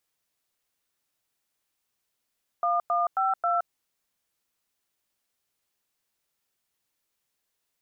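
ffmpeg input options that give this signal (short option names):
-f lavfi -i "aevalsrc='0.0596*clip(min(mod(t,0.269),0.17-mod(t,0.269))/0.002,0,1)*(eq(floor(t/0.269),0)*(sin(2*PI*697*mod(t,0.269))+sin(2*PI*1209*mod(t,0.269)))+eq(floor(t/0.269),1)*(sin(2*PI*697*mod(t,0.269))+sin(2*PI*1209*mod(t,0.269)))+eq(floor(t/0.269),2)*(sin(2*PI*770*mod(t,0.269))+sin(2*PI*1336*mod(t,0.269)))+eq(floor(t/0.269),3)*(sin(2*PI*697*mod(t,0.269))+sin(2*PI*1336*mod(t,0.269))))':d=1.076:s=44100"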